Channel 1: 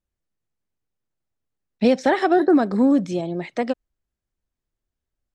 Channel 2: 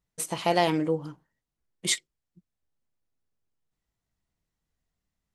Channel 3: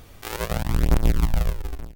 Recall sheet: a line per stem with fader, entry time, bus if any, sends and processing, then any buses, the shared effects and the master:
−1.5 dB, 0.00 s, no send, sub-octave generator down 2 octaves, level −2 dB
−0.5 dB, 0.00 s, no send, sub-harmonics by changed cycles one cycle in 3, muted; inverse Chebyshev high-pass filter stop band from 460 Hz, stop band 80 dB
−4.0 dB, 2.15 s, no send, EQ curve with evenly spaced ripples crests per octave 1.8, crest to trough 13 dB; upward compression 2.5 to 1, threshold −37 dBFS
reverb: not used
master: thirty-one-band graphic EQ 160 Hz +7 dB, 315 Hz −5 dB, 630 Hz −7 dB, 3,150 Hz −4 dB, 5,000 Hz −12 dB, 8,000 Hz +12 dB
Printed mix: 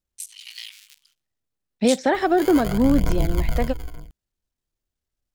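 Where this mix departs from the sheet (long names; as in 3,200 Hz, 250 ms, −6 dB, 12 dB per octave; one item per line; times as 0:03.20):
stem 1: missing sub-octave generator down 2 octaves, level −2 dB
master: missing thirty-one-band graphic EQ 160 Hz +7 dB, 315 Hz −5 dB, 630 Hz −7 dB, 3,150 Hz −4 dB, 5,000 Hz −12 dB, 8,000 Hz +12 dB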